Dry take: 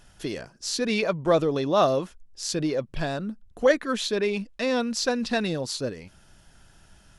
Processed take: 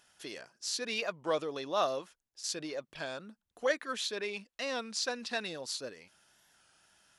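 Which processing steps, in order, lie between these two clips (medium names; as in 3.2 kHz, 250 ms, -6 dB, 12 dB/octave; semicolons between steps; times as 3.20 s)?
high-pass 910 Hz 6 dB/octave; 2.01–2.44 s: compression, threshold -42 dBFS, peak gain reduction 9 dB; warped record 33 1/3 rpm, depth 100 cents; trim -5.5 dB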